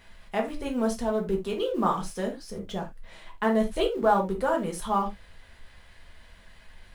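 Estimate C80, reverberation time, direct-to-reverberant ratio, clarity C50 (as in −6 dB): 20.5 dB, non-exponential decay, 1.0 dB, 11.0 dB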